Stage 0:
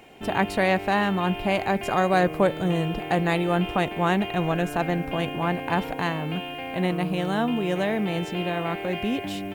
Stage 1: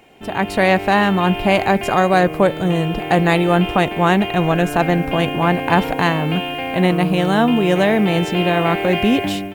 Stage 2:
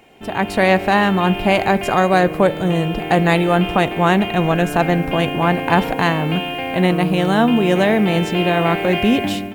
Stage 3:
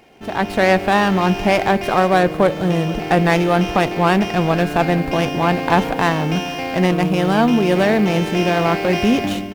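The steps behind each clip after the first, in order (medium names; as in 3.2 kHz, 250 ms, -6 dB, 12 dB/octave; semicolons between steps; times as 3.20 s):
level rider gain up to 12.5 dB
reverberation RT60 1.7 s, pre-delay 4 ms, DRR 19.5 dB
delay 467 ms -21 dB; sliding maximum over 5 samples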